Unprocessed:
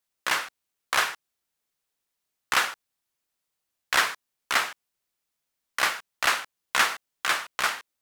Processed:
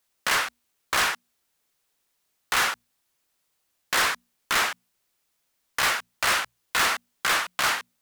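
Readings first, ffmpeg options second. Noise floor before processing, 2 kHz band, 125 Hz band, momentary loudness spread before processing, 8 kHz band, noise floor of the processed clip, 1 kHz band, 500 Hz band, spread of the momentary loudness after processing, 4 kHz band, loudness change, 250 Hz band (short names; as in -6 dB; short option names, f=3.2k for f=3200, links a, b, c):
-83 dBFS, +1.0 dB, n/a, 10 LU, +3.5 dB, -75 dBFS, +1.5 dB, +2.5 dB, 9 LU, +2.0 dB, +1.5 dB, +4.0 dB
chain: -af "bandreject=f=60:t=h:w=6,bandreject=f=120:t=h:w=6,bandreject=f=180:t=h:w=6,bandreject=f=240:t=h:w=6,volume=27.5dB,asoftclip=hard,volume=-27.5dB,volume=8dB"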